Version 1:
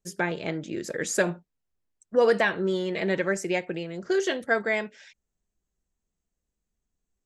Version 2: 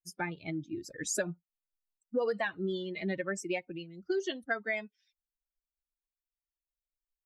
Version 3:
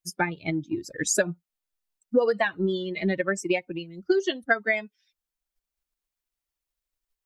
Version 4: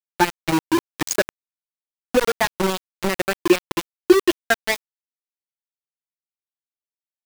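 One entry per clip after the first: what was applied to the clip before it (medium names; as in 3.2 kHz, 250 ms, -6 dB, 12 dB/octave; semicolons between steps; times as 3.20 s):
expander on every frequency bin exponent 2; compression 4:1, threshold -29 dBFS, peak gain reduction 10 dB
transient shaper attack +4 dB, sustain -2 dB; trim +7 dB
small resonant body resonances 340/860/2400 Hz, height 11 dB, ringing for 75 ms; small samples zeroed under -19 dBFS; trim +3.5 dB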